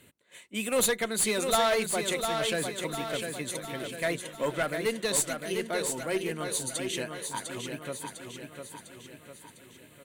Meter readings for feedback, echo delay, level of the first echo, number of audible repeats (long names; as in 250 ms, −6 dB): 51%, 702 ms, −6.0 dB, 5